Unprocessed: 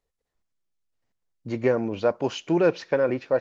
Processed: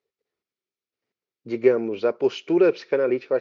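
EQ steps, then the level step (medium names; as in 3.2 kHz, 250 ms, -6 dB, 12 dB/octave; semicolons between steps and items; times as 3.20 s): cabinet simulation 110–5300 Hz, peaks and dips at 130 Hz +3 dB, 230 Hz +4 dB, 390 Hz +5 dB, 1.3 kHz +6 dB, 2.3 kHz +6 dB; peaking EQ 410 Hz +12 dB 0.89 oct; treble shelf 2.2 kHz +11.5 dB; -9.0 dB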